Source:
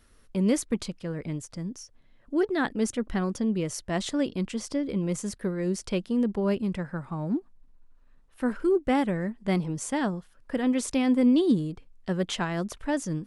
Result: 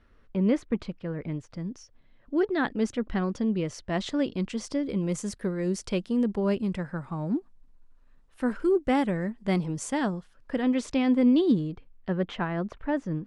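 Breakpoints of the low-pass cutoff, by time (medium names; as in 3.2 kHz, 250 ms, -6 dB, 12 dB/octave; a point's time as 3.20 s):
1.26 s 2.5 kHz
1.74 s 4.5 kHz
3.99 s 4.5 kHz
4.97 s 9.8 kHz
9.97 s 9.8 kHz
10.85 s 4.7 kHz
11.53 s 4.7 kHz
12.31 s 2.1 kHz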